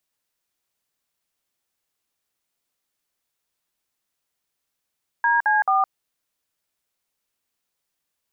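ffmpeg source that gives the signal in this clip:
-f lavfi -i "aevalsrc='0.119*clip(min(mod(t,0.218),0.164-mod(t,0.218))/0.002,0,1)*(eq(floor(t/0.218),0)*(sin(2*PI*941*mod(t,0.218))+sin(2*PI*1633*mod(t,0.218)))+eq(floor(t/0.218),1)*(sin(2*PI*852*mod(t,0.218))+sin(2*PI*1633*mod(t,0.218)))+eq(floor(t/0.218),2)*(sin(2*PI*770*mod(t,0.218))+sin(2*PI*1209*mod(t,0.218))))':d=0.654:s=44100"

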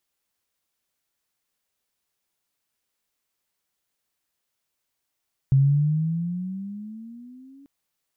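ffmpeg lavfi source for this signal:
-f lavfi -i "aevalsrc='pow(10,(-13-33*t/2.14)/20)*sin(2*PI*133*2.14/(13*log(2)/12)*(exp(13*log(2)/12*t/2.14)-1))':d=2.14:s=44100"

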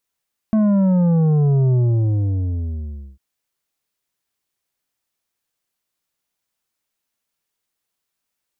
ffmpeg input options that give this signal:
-f lavfi -i "aevalsrc='0.211*clip((2.65-t)/1.45,0,1)*tanh(2.51*sin(2*PI*220*2.65/log(65/220)*(exp(log(65/220)*t/2.65)-1)))/tanh(2.51)':d=2.65:s=44100"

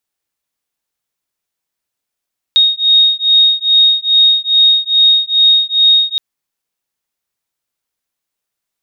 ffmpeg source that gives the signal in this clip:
-f lavfi -i "aevalsrc='0.299*(sin(2*PI*3730*t)+sin(2*PI*3732.4*t))':d=3.62:s=44100"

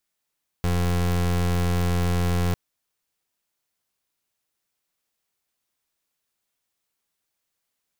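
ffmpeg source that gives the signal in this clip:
-f lavfi -i "aevalsrc='0.0794*(2*lt(mod(87.7*t,1),0.29)-1)':d=1.9:s=44100"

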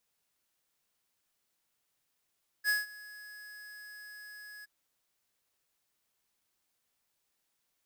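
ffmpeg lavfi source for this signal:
-f lavfi -i "aevalsrc='0.0447*(2*lt(mod(1680*t,1),0.5)-1)':d=2.02:s=44100,afade=t=in:d=0.05,afade=t=out:st=0.05:d=0.168:silence=0.0841,afade=t=out:st=2:d=0.02"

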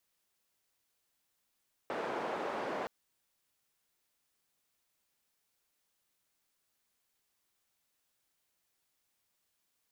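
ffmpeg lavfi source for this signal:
-f lavfi -i "anoisesrc=c=white:d=0.97:r=44100:seed=1,highpass=f=330,lowpass=f=840,volume=-16.9dB"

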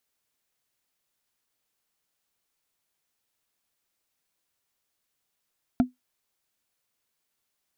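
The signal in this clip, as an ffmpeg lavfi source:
-f lavfi -i "aevalsrc='0.237*pow(10,-3*t/0.15)*sin(2*PI*251*t)+0.0944*pow(10,-3*t/0.044)*sin(2*PI*692*t)+0.0376*pow(10,-3*t/0.02)*sin(2*PI*1356.4*t)+0.015*pow(10,-3*t/0.011)*sin(2*PI*2242.2*t)+0.00596*pow(10,-3*t/0.007)*sin(2*PI*3348.3*t)':d=0.45:s=44100"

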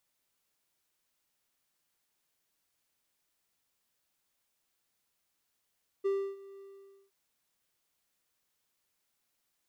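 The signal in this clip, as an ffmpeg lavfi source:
-f lavfi -i "aevalsrc='0.0631*(1-4*abs(mod(393*t+0.25,1)-0.5))':d=1.069:s=44100,afade=t=in:d=0.019,afade=t=out:st=0.019:d=0.3:silence=0.0891,afade=t=out:st=0.56:d=0.509"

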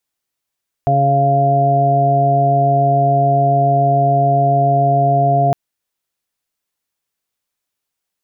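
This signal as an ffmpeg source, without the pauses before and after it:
-f lavfi -i "aevalsrc='0.168*sin(2*PI*139*t)+0.0531*sin(2*PI*278*t)+0.0596*sin(2*PI*417*t)+0.0398*sin(2*PI*556*t)+0.251*sin(2*PI*695*t)':d=4.66:s=44100"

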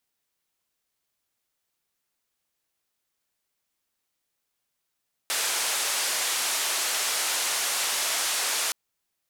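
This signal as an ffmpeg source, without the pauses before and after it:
-f lavfi -i "anoisesrc=c=white:d=3.42:r=44100:seed=1,highpass=f=560,lowpass=f=10000,volume=-18.6dB"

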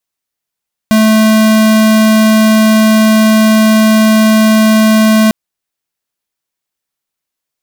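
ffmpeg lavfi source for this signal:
-f lavfi -i "aevalsrc='0.447*(2*lt(mod(218*t,1),0.5)-1)':d=4.4:s=44100"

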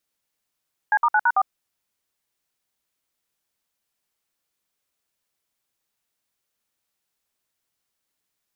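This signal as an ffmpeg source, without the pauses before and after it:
-f lavfi -i "aevalsrc='0.133*clip(min(mod(t,0.111),0.053-mod(t,0.111))/0.002,0,1)*(eq(floor(t/0.111),0)*(sin(2*PI*852*mod(t,0.111))+sin(2*PI*1633*mod(t,0.111)))+eq(floor(t/0.111),1)*(sin(2*PI*941*mod(t,0.111))+sin(2*PI*1209*mod(t,0.111)))+eq(floor(t/0.111),2)*(sin(2*PI*852*mod(t,0.111))+sin(2*PI*1477*mod(t,0.111)))+eq(floor(t/0.111),3)*(sin(2*PI*941*mod(t,0.111))+sin(2*PI*1477*mod(t,0.111)))+eq(floor(t/0.111),4)*(sin(2*PI*770*mod(t,0.111))+sin(2*PI*1209*mod(t,0.111))))':d=0.555:s=44100"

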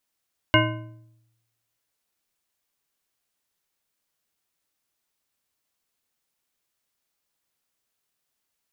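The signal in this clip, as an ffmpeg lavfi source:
-f lavfi -i "aevalsrc='0.112*pow(10,-3*t/0.96)*sin(2*PI*115*t)+0.112*pow(10,-3*t/0.708)*sin(2*PI*317.1*t)+0.112*pow(10,-3*t/0.579)*sin(2*PI*621.5*t)+0.112*pow(10,-3*t/0.498)*sin(2*PI*1027.3*t)+0.112*pow(10,-3*t/0.441)*sin(2*PI*1534.1*t)+0.112*pow(10,-3*t/0.399)*sin(2*PI*2143.6*t)+0.112*pow(10,-3*t/0.366)*sin(2*PI*2853.1*t)':d=1.55:s=44100"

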